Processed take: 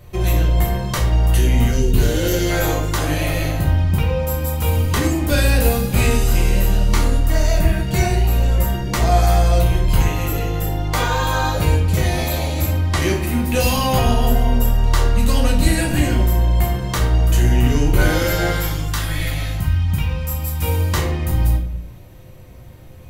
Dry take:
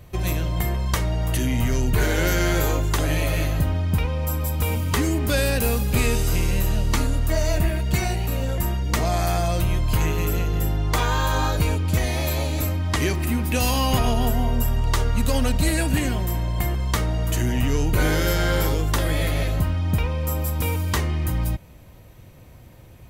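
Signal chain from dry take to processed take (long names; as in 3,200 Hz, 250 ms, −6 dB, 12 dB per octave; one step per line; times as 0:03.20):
0:01.71–0:02.50: gain on a spectral selection 560–2,500 Hz −8 dB
0:18.52–0:20.63: parametric band 470 Hz −13.5 dB 1.7 octaves
rectangular room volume 83 cubic metres, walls mixed, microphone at 0.88 metres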